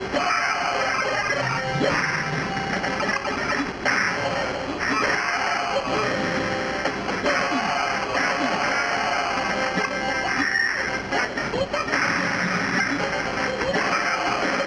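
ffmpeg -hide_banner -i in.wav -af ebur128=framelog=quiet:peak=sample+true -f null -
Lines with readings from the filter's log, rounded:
Integrated loudness:
  I:         -22.8 LUFS
  Threshold: -32.8 LUFS
Loudness range:
  LRA:         0.9 LU
  Threshold: -42.9 LUFS
  LRA low:   -23.3 LUFS
  LRA high:  -22.4 LUFS
Sample peak:
  Peak:       -9.1 dBFS
True peak:
  Peak:       -9.0 dBFS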